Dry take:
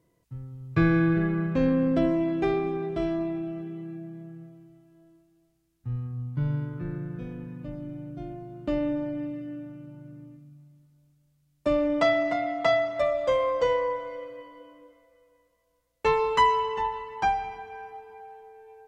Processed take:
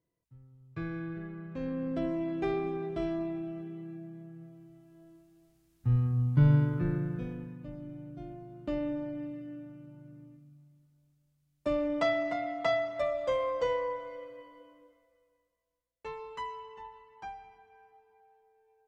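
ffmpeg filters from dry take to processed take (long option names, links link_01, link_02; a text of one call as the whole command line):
ffmpeg -i in.wav -af "volume=5.5dB,afade=type=in:start_time=1.43:duration=1.21:silence=0.281838,afade=type=in:start_time=4.33:duration=1.56:silence=0.298538,afade=type=out:start_time=6.55:duration=1.03:silence=0.266073,afade=type=out:start_time=14.55:duration=1.53:silence=0.237137" out.wav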